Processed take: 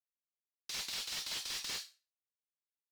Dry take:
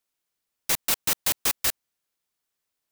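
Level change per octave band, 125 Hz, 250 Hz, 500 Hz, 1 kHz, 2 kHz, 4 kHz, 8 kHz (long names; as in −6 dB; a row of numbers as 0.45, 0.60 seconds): −18.0, −18.5, −18.5, −16.5, −12.0, −7.0, −14.5 decibels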